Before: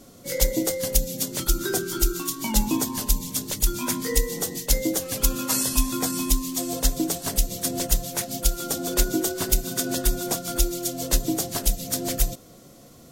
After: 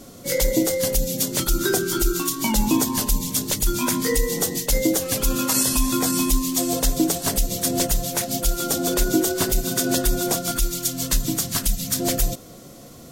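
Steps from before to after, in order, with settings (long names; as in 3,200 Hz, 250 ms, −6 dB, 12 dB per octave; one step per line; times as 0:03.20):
0:10.51–0:12.00: flat-topped bell 510 Hz −10 dB
brickwall limiter −14.5 dBFS, peak gain reduction 11 dB
level +6 dB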